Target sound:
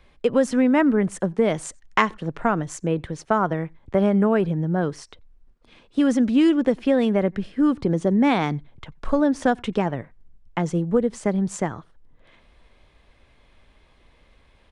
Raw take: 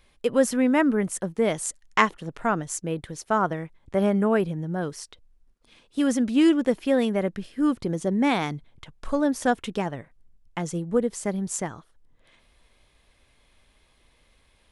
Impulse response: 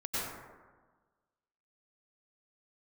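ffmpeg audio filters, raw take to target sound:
-filter_complex "[0:a]aemphasis=mode=reproduction:type=75kf,asplit=2[s0][s1];[1:a]atrim=start_sample=2205,atrim=end_sample=3969[s2];[s1][s2]afir=irnorm=-1:irlink=0,volume=0.224[s3];[s0][s3]amix=inputs=2:normalize=0,aresample=22050,aresample=44100,acrossover=split=130|3000[s4][s5][s6];[s5]acompressor=threshold=0.0794:ratio=3[s7];[s4][s7][s6]amix=inputs=3:normalize=0,volume=1.88"

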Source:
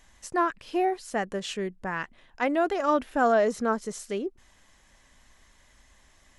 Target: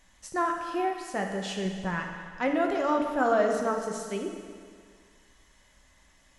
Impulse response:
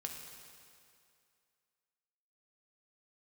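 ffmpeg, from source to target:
-filter_complex "[0:a]asettb=1/sr,asplit=3[s0][s1][s2];[s0]atrim=end=1.654[s3];[s1]atrim=start=1.65:end=2.54,asetpts=PTS-STARTPTS,afade=t=in:d=0.004:c=qsin,afade=t=out:st=0.886:d=0.004:c=qsin,lowshelf=f=180:g=8.5[s4];[s2]atrim=start=2.536[s5];[s3][s4]acrossfade=d=0.004:c1=hsin:c2=qsin[s6];[s6][s5]acrossfade=d=0.004:c1=qsin:c2=hsin[s7];[1:a]atrim=start_sample=2205,asetrate=52920,aresample=44100[s8];[s7][s8]afir=irnorm=-1:irlink=0,volume=1.26"

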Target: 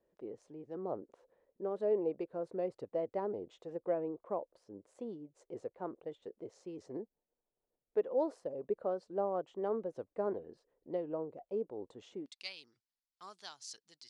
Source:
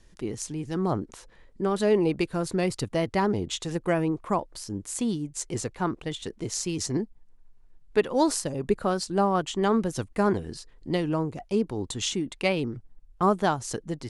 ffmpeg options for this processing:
-af "asetnsamples=n=441:p=0,asendcmd='12.26 bandpass f 4700',bandpass=f=530:t=q:w=2.9:csg=0,volume=0.596"

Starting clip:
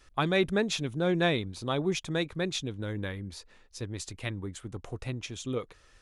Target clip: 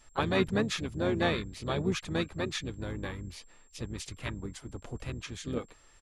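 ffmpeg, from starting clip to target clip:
-filter_complex "[0:a]asplit=4[s0][s1][s2][s3];[s1]asetrate=22050,aresample=44100,atempo=2,volume=0.501[s4];[s2]asetrate=29433,aresample=44100,atempo=1.49831,volume=0.447[s5];[s3]asetrate=52444,aresample=44100,atempo=0.840896,volume=0.251[s6];[s0][s4][s5][s6]amix=inputs=4:normalize=0,aeval=exprs='val(0)+0.001*sin(2*PI*7500*n/s)':c=same,volume=0.668"

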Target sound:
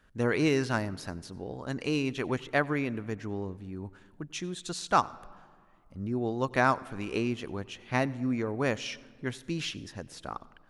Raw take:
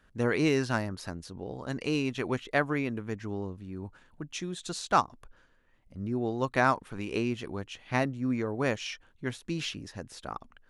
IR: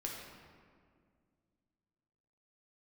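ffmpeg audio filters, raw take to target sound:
-filter_complex "[0:a]asplit=2[s0][s1];[1:a]atrim=start_sample=2205,adelay=92[s2];[s1][s2]afir=irnorm=-1:irlink=0,volume=0.0944[s3];[s0][s3]amix=inputs=2:normalize=0"

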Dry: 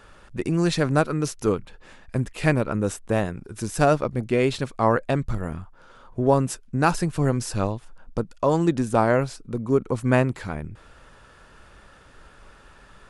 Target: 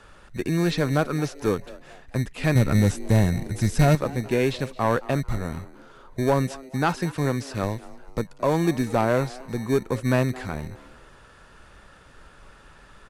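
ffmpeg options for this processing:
-filter_complex "[0:a]acrossover=split=5100[s0][s1];[s1]acompressor=threshold=0.00398:ratio=4:attack=1:release=60[s2];[s0][s2]amix=inputs=2:normalize=0,asettb=1/sr,asplit=3[s3][s4][s5];[s3]atrim=end=2.554[s6];[s4]atrim=start=2.55:end=3.95,asetpts=PTS-STARTPTS,afade=t=in:d=0.004:c=qsin,afade=t=out:st=1.396:d=0.004:c=qsin,bass=f=250:g=12,treble=f=4000:g=8[s7];[s5]atrim=start=3.946[s8];[s6][s7]acrossfade=d=0.004:c1=hsin:c2=qsin[s9];[s9][s8]acrossfade=d=0.004:c1=qsin:c2=hsin,asettb=1/sr,asplit=3[s10][s11][s12];[s10]atrim=end=6.624[s13];[s11]atrim=start=6.62:end=7.63,asetpts=PTS-STARTPTS,afade=t=in:d=0.004:c=qsin,afade=t=out:st=1.006:d=0.004:c=qsin,highpass=f=120:p=1[s14];[s12]atrim=start=7.626[s15];[s13][s14]acrossfade=d=0.004:c1=hsin:c2=qsin[s16];[s16][s15]acrossfade=d=0.004:c1=qsin:c2=hsin,acrossover=split=320|5100[s17][s18][s19];[s17]acrusher=samples=22:mix=1:aa=0.000001[s20];[s20][s18][s19]amix=inputs=3:normalize=0,asoftclip=type=tanh:threshold=0.282,asplit=2[s21][s22];[s22]asplit=3[s23][s24][s25];[s23]adelay=220,afreqshift=130,volume=0.1[s26];[s24]adelay=440,afreqshift=260,volume=0.0422[s27];[s25]adelay=660,afreqshift=390,volume=0.0176[s28];[s26][s27][s28]amix=inputs=3:normalize=0[s29];[s21][s29]amix=inputs=2:normalize=0,aresample=32000,aresample=44100"

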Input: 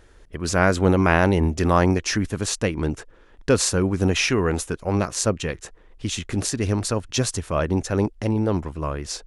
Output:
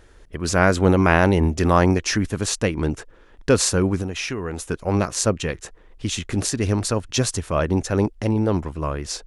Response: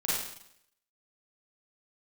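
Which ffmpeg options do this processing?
-filter_complex "[0:a]asettb=1/sr,asplit=3[s0][s1][s2];[s0]atrim=end=3.974[s3];[s1]atrim=start=3.97:end=4.7,asetpts=PTS-STARTPTS,afade=t=in:d=0.004:c=qsin,afade=t=out:st=0.726:d=0.004:c=qsin,acompressor=threshold=0.0501:ratio=6[s4];[s2]atrim=start=4.696[s5];[s3][s4]acrossfade=d=0.004:c1=hsin:c2=qsin[s6];[s6][s5]acrossfade=d=0.004:c1=qsin:c2=hsin,volume=1.19"

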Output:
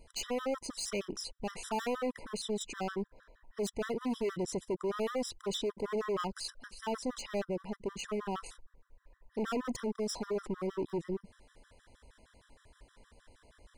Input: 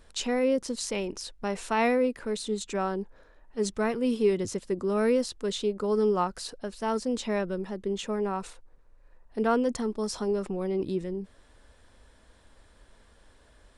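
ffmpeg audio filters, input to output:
-af "volume=29.9,asoftclip=hard,volume=0.0335,afftfilt=real='re*gt(sin(2*PI*6.4*pts/sr)*(1-2*mod(floor(b*sr/1024/1000),2)),0)':imag='im*gt(sin(2*PI*6.4*pts/sr)*(1-2*mod(floor(b*sr/1024/1000),2)),0)':win_size=1024:overlap=0.75"

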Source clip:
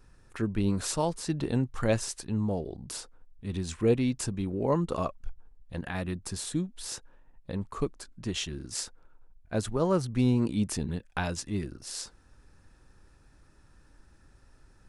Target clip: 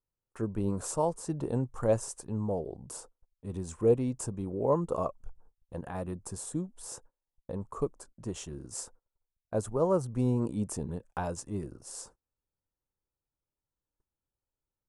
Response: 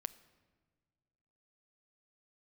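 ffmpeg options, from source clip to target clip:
-af "agate=range=0.0316:threshold=0.00447:ratio=16:detection=peak,equalizer=f=125:t=o:w=1:g=4,equalizer=f=500:t=o:w=1:g=8,equalizer=f=1000:t=o:w=1:g=7,equalizer=f=2000:t=o:w=1:g=-7,equalizer=f=4000:t=o:w=1:g=-10,equalizer=f=8000:t=o:w=1:g=7,volume=0.447"

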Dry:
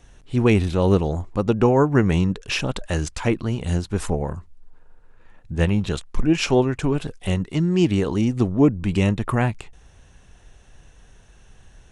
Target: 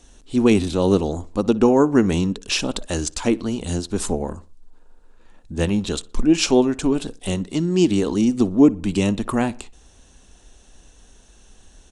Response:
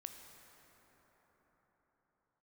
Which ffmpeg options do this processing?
-filter_complex "[0:a]equalizer=f=125:t=o:w=1:g=-11,equalizer=f=250:t=o:w=1:g=7,equalizer=f=2000:t=o:w=1:g=-5,equalizer=f=4000:t=o:w=1:g=5,equalizer=f=8000:t=o:w=1:g=8,asplit=2[s0][s1];[s1]adelay=60,lowpass=f=3500:p=1,volume=0.0891,asplit=2[s2][s3];[s3]adelay=60,lowpass=f=3500:p=1,volume=0.44,asplit=2[s4][s5];[s5]adelay=60,lowpass=f=3500:p=1,volume=0.44[s6];[s2][s4][s6]amix=inputs=3:normalize=0[s7];[s0][s7]amix=inputs=2:normalize=0"

